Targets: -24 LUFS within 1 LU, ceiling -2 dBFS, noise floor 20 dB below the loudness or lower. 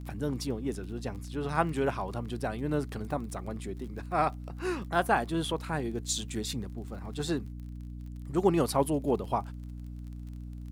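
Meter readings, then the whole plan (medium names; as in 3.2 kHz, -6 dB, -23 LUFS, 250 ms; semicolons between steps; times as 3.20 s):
tick rate 27 per s; hum 60 Hz; highest harmonic 300 Hz; hum level -38 dBFS; loudness -32.0 LUFS; peak level -10.5 dBFS; loudness target -24.0 LUFS
-> de-click; de-hum 60 Hz, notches 5; trim +8 dB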